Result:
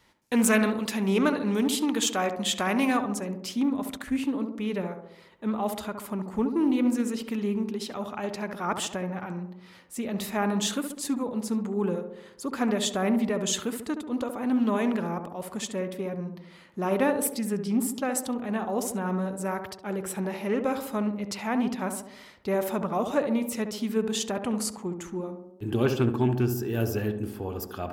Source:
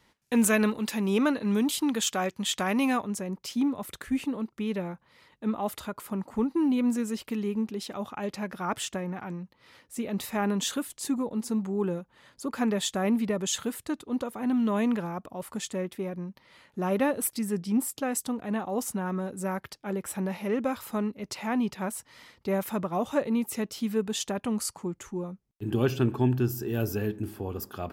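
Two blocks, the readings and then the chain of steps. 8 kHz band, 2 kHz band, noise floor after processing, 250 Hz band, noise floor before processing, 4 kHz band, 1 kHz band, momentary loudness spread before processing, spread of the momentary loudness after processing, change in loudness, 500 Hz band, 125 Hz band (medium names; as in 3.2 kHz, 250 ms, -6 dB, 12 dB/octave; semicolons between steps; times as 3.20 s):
+1.0 dB, +2.0 dB, -51 dBFS, +1.0 dB, -68 dBFS, +2.0 dB, +2.5 dB, 11 LU, 10 LU, +1.5 dB, +2.0 dB, +0.5 dB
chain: peaking EQ 170 Hz -2.5 dB 2.6 oct; tape echo 69 ms, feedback 70%, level -5.5 dB, low-pass 1 kHz; loudspeaker Doppler distortion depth 0.12 ms; trim +2 dB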